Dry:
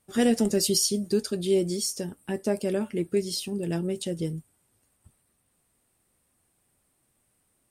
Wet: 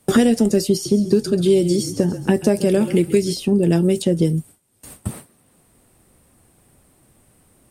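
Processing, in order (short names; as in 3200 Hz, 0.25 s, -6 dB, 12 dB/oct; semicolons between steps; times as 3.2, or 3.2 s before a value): gate with hold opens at -54 dBFS; tilt shelf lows +4 dB, about 830 Hz; 0.72–3.33 frequency-shifting echo 0.133 s, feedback 34%, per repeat -33 Hz, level -15 dB; three-band squash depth 100%; gain +7 dB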